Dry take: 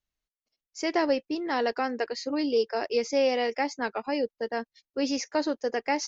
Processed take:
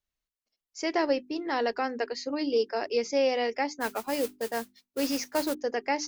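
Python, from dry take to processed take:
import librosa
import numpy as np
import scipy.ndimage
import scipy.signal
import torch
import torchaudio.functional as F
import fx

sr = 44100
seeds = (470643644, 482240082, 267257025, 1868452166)

y = fx.mod_noise(x, sr, seeds[0], snr_db=12, at=(3.8, 5.53), fade=0.02)
y = fx.hum_notches(y, sr, base_hz=50, count=8)
y = y * 10.0 ** (-1.0 / 20.0)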